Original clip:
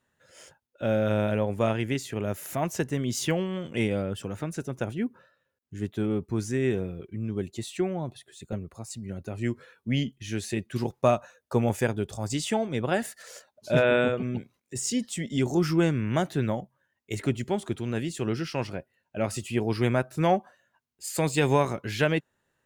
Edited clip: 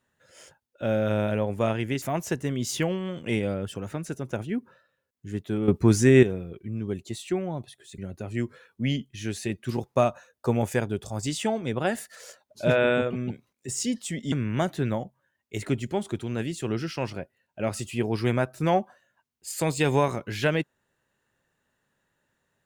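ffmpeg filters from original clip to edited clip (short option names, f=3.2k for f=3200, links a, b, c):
-filter_complex "[0:a]asplit=6[a][b][c][d][e][f];[a]atrim=end=2.022[g];[b]atrim=start=2.498:end=6.162[h];[c]atrim=start=6.158:end=6.712,asetpts=PTS-STARTPTS,volume=10dB[i];[d]atrim=start=6.708:end=8.462[j];[e]atrim=start=9.048:end=15.392[k];[f]atrim=start=15.888[l];[g][h]acrossfade=d=0.004:c1=hsin:c2=hsin[m];[m][i]acrossfade=d=0.004:c1=hsin:c2=hsin[n];[n][j]acrossfade=d=0.004:c1=hsin:c2=hsin[o];[o][k]acrossfade=d=0.004:c1=hsin:c2=hsin[p];[p][l]acrossfade=d=0.004:c1=hsin:c2=hsin"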